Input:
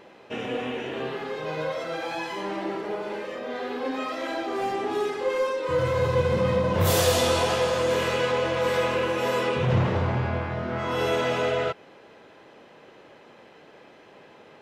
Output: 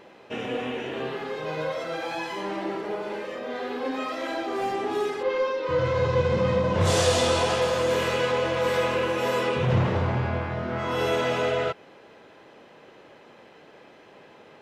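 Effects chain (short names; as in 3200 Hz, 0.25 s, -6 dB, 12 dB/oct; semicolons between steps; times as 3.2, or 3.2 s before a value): 5.22–7.6 LPF 4900 Hz -> 11000 Hz 24 dB/oct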